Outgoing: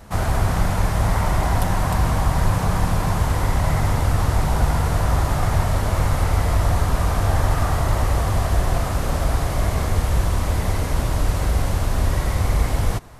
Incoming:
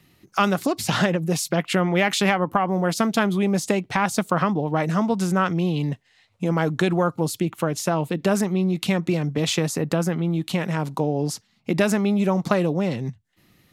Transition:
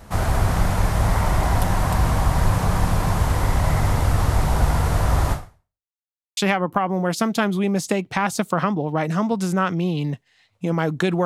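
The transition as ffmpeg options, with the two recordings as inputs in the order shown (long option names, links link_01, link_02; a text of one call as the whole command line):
ffmpeg -i cue0.wav -i cue1.wav -filter_complex "[0:a]apad=whole_dur=11.25,atrim=end=11.25,asplit=2[link_01][link_02];[link_01]atrim=end=5.9,asetpts=PTS-STARTPTS,afade=type=out:start_time=5.32:duration=0.58:curve=exp[link_03];[link_02]atrim=start=5.9:end=6.37,asetpts=PTS-STARTPTS,volume=0[link_04];[1:a]atrim=start=2.16:end=7.04,asetpts=PTS-STARTPTS,afade=type=in:duration=0.004:curve=hsin[link_05];[link_03][link_04][link_05]concat=n=3:v=0:a=1" out.wav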